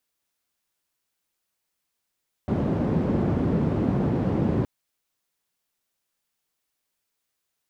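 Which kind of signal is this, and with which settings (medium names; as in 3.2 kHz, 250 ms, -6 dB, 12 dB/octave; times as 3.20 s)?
noise band 100–240 Hz, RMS -23.5 dBFS 2.17 s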